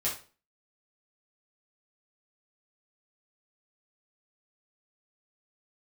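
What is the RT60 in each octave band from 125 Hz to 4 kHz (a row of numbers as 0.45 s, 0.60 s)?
0.40 s, 0.40 s, 0.40 s, 0.35 s, 0.35 s, 0.30 s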